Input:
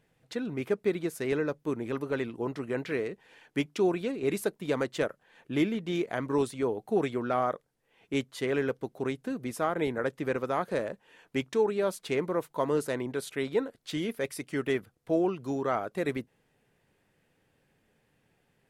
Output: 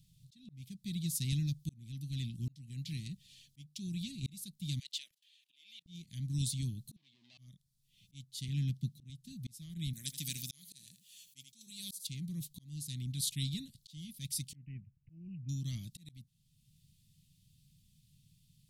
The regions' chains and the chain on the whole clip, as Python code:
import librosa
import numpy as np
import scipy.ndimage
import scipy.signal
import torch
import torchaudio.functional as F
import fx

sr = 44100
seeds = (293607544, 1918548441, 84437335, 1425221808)

y = fx.chain(x, sr, fx.highpass(hz=510.0, slope=24),
    fx.peak_eq(hz=2600.0, db=11.0, octaves=1.5),
    fx.level_steps(step_db=21), at=(4.79, 5.86))
y = fx.chain(y, sr, fx.leveller(passes=5),
    fx.ladder_bandpass(hz=830.0, resonance_pct=80), at=(6.96, 7.38))
y = fx.chain(y, sr, fx.highpass(hz=140.0, slope=12),
    fx.bass_treble(bass_db=6, treble_db=-6), at=(8.48, 9.1))
y = fx.chain(y, sr, fx.riaa(side='recording'),
    fx.echo_single(ms=81, db=-13.0), at=(9.93, 12.07))
y = fx.chain(y, sr, fx.air_absorb(metres=290.0),
    fx.resample_bad(factor=8, down='none', up='filtered'), at=(14.55, 15.49))
y = scipy.signal.sosfilt(scipy.signal.ellip(3, 1.0, 50, [160.0, 3800.0], 'bandstop', fs=sr, output='sos'), y)
y = fx.auto_swell(y, sr, attack_ms=681.0)
y = y * librosa.db_to_amplitude(9.0)